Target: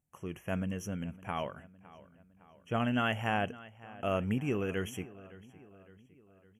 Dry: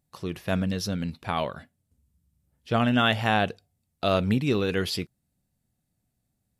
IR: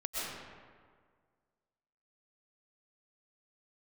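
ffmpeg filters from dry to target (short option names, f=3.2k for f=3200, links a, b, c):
-filter_complex "[0:a]asuperstop=centerf=4300:order=20:qfactor=1.8,asplit=2[a][b];[b]adelay=560,lowpass=f=4.2k:p=1,volume=-19dB,asplit=2[c][d];[d]adelay=560,lowpass=f=4.2k:p=1,volume=0.54,asplit=2[e][f];[f]adelay=560,lowpass=f=4.2k:p=1,volume=0.54,asplit=2[g][h];[h]adelay=560,lowpass=f=4.2k:p=1,volume=0.54[i];[a][c][e][g][i]amix=inputs=5:normalize=0,volume=-8dB"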